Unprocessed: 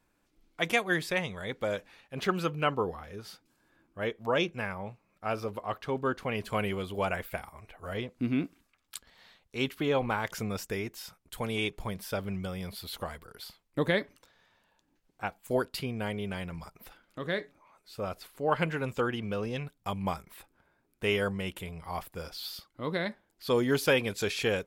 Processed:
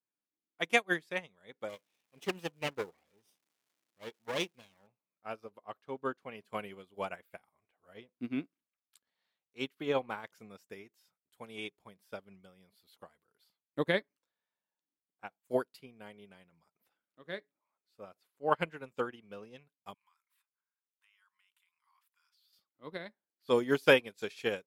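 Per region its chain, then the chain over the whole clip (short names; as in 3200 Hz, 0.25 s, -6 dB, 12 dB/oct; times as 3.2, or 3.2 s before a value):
1.68–4.86 minimum comb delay 0.35 ms + high shelf 4600 Hz +6 dB + crackle 400/s -41 dBFS
19.94–22.53 elliptic high-pass 1000 Hz + compressor 3:1, threshold -44 dBFS
whole clip: HPF 170 Hz 12 dB/oct; upward expander 2.5:1, over -41 dBFS; gain +3.5 dB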